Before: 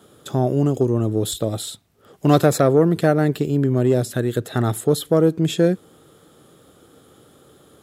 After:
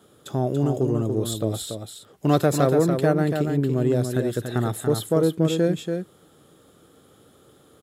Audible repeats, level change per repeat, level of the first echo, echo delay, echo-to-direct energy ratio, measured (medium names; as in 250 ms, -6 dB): 1, no regular repeats, -6.0 dB, 285 ms, -6.0 dB